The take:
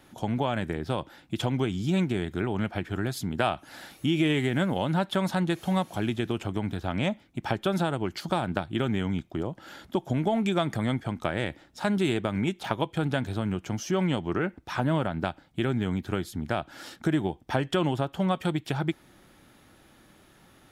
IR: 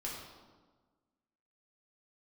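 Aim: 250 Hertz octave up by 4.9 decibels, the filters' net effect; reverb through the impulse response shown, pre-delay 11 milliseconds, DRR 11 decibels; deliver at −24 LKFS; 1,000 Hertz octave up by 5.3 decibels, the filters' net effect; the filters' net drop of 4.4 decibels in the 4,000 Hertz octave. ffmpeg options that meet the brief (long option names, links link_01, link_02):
-filter_complex "[0:a]equalizer=frequency=250:width_type=o:gain=6.5,equalizer=frequency=1000:width_type=o:gain=7,equalizer=frequency=4000:width_type=o:gain=-6.5,asplit=2[link_01][link_02];[1:a]atrim=start_sample=2205,adelay=11[link_03];[link_02][link_03]afir=irnorm=-1:irlink=0,volume=-12dB[link_04];[link_01][link_04]amix=inputs=2:normalize=0,volume=0.5dB"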